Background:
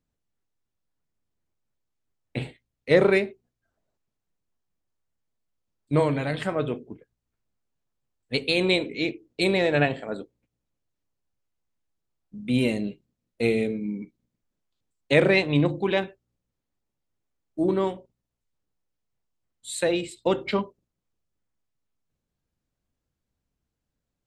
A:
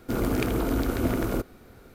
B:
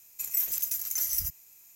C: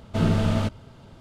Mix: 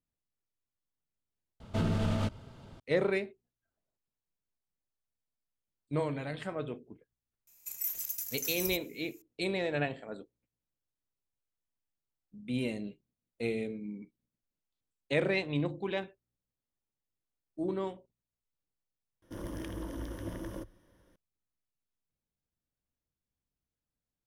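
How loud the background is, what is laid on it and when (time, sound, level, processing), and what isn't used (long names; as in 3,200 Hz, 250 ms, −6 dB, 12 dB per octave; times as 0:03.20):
background −10.5 dB
0:01.60: overwrite with C −4 dB + brickwall limiter −17.5 dBFS
0:07.47: mix in B −7 dB
0:19.22: overwrite with A −16 dB + EQ curve with evenly spaced ripples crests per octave 1.2, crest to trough 12 dB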